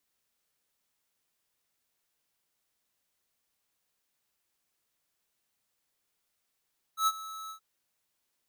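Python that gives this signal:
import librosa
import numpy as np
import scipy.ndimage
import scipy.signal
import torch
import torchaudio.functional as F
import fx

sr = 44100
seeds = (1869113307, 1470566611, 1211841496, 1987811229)

y = fx.adsr_tone(sr, wave='square', hz=1300.0, attack_ms=101.0, decay_ms=44.0, sustain_db=-17.5, held_s=0.53, release_ms=94.0, level_db=-24.0)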